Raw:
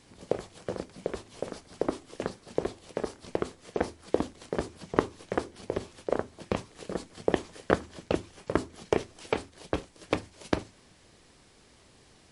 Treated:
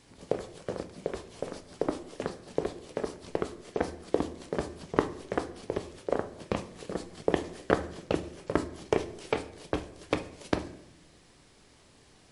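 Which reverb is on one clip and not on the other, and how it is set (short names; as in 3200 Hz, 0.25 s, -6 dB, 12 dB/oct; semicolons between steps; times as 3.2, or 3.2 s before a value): shoebox room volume 200 m³, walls mixed, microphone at 0.3 m; gain -1 dB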